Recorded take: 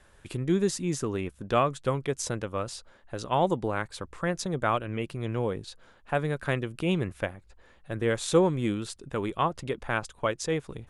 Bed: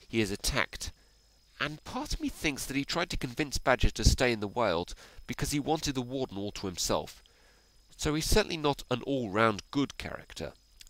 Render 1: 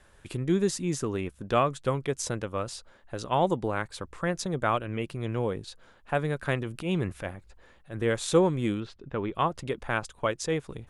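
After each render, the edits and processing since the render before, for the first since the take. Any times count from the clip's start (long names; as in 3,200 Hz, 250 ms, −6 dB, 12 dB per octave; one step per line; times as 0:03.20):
0:06.55–0:08.02: transient designer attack −8 dB, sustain +3 dB
0:08.80–0:09.35: high-frequency loss of the air 240 metres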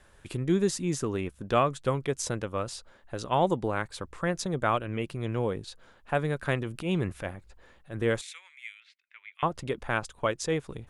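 0:08.21–0:09.43: four-pole ladder high-pass 2,000 Hz, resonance 75%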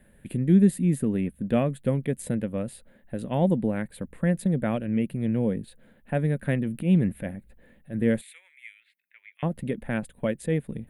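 drawn EQ curve 100 Hz 0 dB, 220 Hz +13 dB, 370 Hz −2 dB, 540 Hz +2 dB, 1,200 Hz −15 dB, 1,800 Hz 0 dB, 4,100 Hz −10 dB, 5,700 Hz −24 dB, 9,200 Hz +1 dB, 13,000 Hz +9 dB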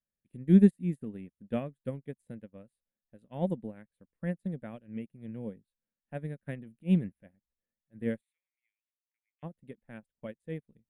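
expander for the loud parts 2.5 to 1, over −41 dBFS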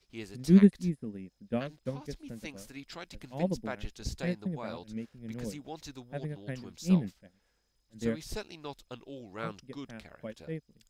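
mix in bed −13.5 dB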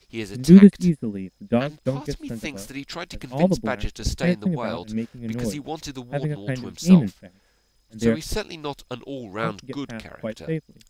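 level +11.5 dB
brickwall limiter −1 dBFS, peak gain reduction 2.5 dB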